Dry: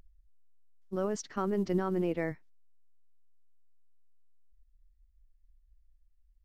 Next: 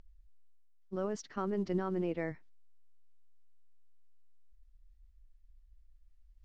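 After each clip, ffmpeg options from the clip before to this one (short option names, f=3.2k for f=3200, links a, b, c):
-af "lowpass=6.1k,areverse,acompressor=mode=upward:threshold=-46dB:ratio=2.5,areverse,volume=-3.5dB"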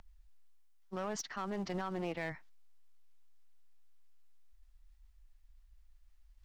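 -filter_complex "[0:a]lowshelf=f=580:t=q:w=1.5:g=-8.5,acrossover=split=150|2700[a][b][c];[b]alimiter=level_in=12dB:limit=-24dB:level=0:latency=1:release=74,volume=-12dB[d];[a][d][c]amix=inputs=3:normalize=0,aeval=exprs='clip(val(0),-1,0.00708)':c=same,volume=7.5dB"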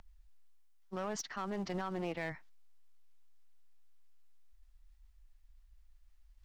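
-af anull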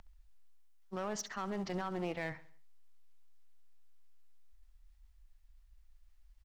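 -af "aecho=1:1:67|134|201|268:0.141|0.0664|0.0312|0.0147"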